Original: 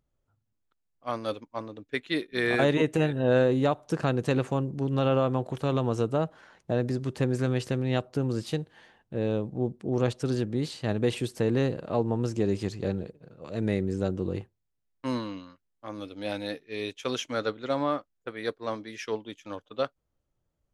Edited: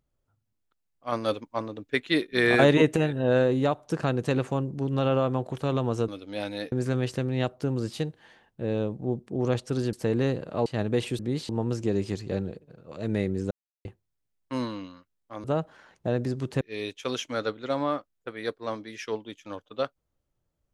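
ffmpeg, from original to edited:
-filter_complex "[0:a]asplit=13[a][b][c][d][e][f][g][h][i][j][k][l][m];[a]atrim=end=1.122[n];[b]atrim=start=1.118:end=2.962,asetpts=PTS-STARTPTS,volume=4.5dB[o];[c]atrim=start=2.958:end=6.082[p];[d]atrim=start=15.968:end=16.612[q];[e]atrim=start=7.248:end=10.462[r];[f]atrim=start=11.288:end=12.022[s];[g]atrim=start=10.758:end=11.292[t];[h]atrim=start=10.458:end=10.762[u];[i]atrim=start=12.018:end=14.04,asetpts=PTS-STARTPTS,afade=t=out:st=2.018:d=0.004:c=hsin[v];[j]atrim=start=14.04:end=14.38,asetpts=PTS-STARTPTS,volume=0[w];[k]atrim=start=14.38:end=15.972,asetpts=PTS-STARTPTS,afade=t=in:d=0.004:c=hsin[x];[l]atrim=start=6.078:end=7.252[y];[m]atrim=start=16.608[z];[n][o]acrossfade=d=0.004:c1=hsin:c2=hsin[aa];[aa][p]acrossfade=d=0.004:c1=hsin:c2=hsin[ab];[ab][q]acrossfade=d=0.004:c1=hsin:c2=hsin[ac];[ac][r]acrossfade=d=0.004:c1=hsin:c2=hsin[ad];[ad][s]acrossfade=d=0.004:c1=hsin:c2=hsin[ae];[ae][t]acrossfade=d=0.004:c1=hsin:c2=hsin[af];[af][u]acrossfade=d=0.004:c1=hsin:c2=hsin[ag];[v][w][x]concat=n=3:v=0:a=1[ah];[ag][ah]acrossfade=d=0.004:c1=hsin:c2=hsin[ai];[ai][y]acrossfade=d=0.004:c1=hsin:c2=hsin[aj];[aj][z]acrossfade=d=0.004:c1=hsin:c2=hsin"

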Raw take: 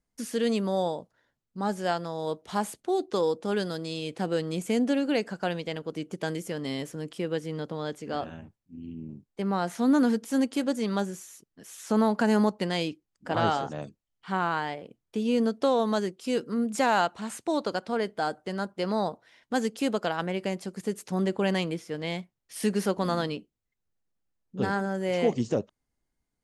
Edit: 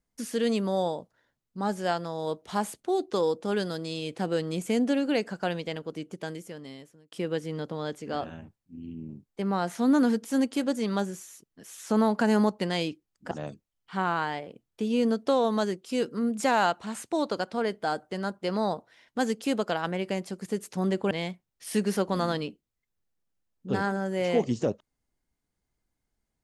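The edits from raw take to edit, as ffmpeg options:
-filter_complex "[0:a]asplit=4[a][b][c][d];[a]atrim=end=7.12,asetpts=PTS-STARTPTS,afade=t=out:st=5.65:d=1.47[e];[b]atrim=start=7.12:end=13.312,asetpts=PTS-STARTPTS,afade=t=in:d=0.004:c=hsin[f];[c]atrim=start=13.658:end=21.462[g];[d]atrim=start=21.998[h];[e][f]concat=n=2:v=0:a=1[i];[i][g]acrossfade=d=0.004:c1=hsin:c2=hsin[j];[j][h]acrossfade=d=0.004:c1=hsin:c2=hsin"

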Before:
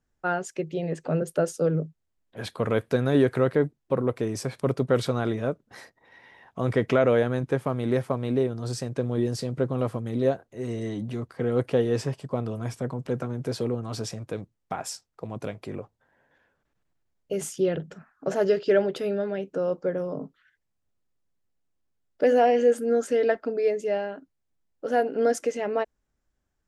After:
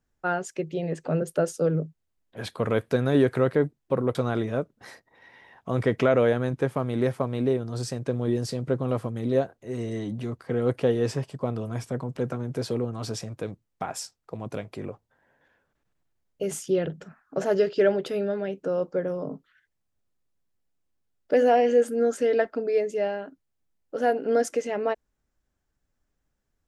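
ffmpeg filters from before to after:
-filter_complex "[0:a]asplit=2[a][b];[a]atrim=end=4.152[c];[b]atrim=start=5.048[d];[c][d]acrossfade=d=0.004:c1=hsin:c2=hsin"

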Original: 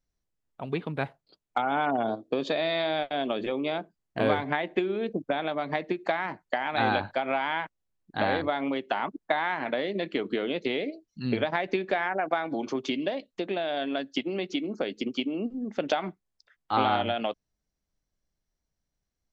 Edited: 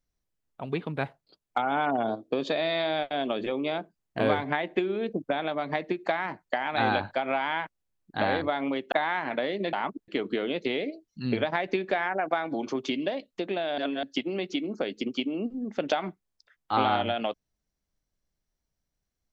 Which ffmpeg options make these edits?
-filter_complex "[0:a]asplit=6[a][b][c][d][e][f];[a]atrim=end=8.922[g];[b]atrim=start=9.268:end=10.082[h];[c]atrim=start=8.918:end=9.272[i];[d]atrim=start=10.078:end=13.782[j];[e]atrim=start=13.778:end=14.032,asetpts=PTS-STARTPTS,areverse[k];[f]atrim=start=14.028[l];[g][h]acrossfade=d=0.004:c1=hsin:c2=hsin[m];[m][i]acrossfade=d=0.004:c1=hsin:c2=hsin[n];[n][j]acrossfade=d=0.004:c1=hsin:c2=hsin[o];[o][k]acrossfade=d=0.004:c1=hsin:c2=hsin[p];[p][l]acrossfade=d=0.004:c1=hsin:c2=hsin"

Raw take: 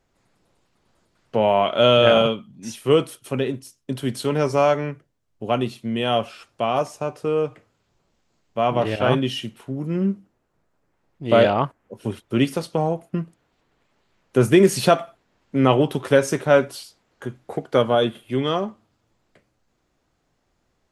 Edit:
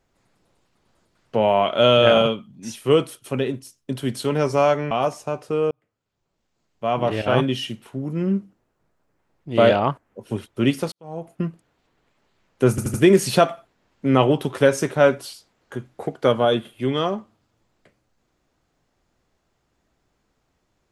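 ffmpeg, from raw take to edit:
-filter_complex "[0:a]asplit=7[a][b][c][d][e][f][g];[a]atrim=end=4.912[h];[b]atrim=start=6.648:end=7.45,asetpts=PTS-STARTPTS,afade=t=out:st=0.798:d=0.004:c=hsin[i];[c]atrim=start=7.45:end=12.66,asetpts=PTS-STARTPTS,afade=t=in:d=1.49,afade=t=out:st=5.206:d=0.004:c=hsin[j];[d]atrim=start=12.66:end=14.522,asetpts=PTS-STARTPTS,afade=t=in:d=0.4:c=qua[k];[e]atrim=start=14.438:end=14.522[l];[f]atrim=start=14.438:end=14.522[m];[g]atrim=start=14.438[n];[i][j][k]concat=n=3:v=0:a=1[o];[h][o]acrossfade=d=0.004:c1=hsin:c2=hsin[p];[p][l]acrossfade=d=0.004:c1=hsin:c2=hsin[q];[q][m]acrossfade=d=0.004:c1=hsin:c2=hsin[r];[r][n]acrossfade=d=0.004:c1=hsin:c2=hsin"

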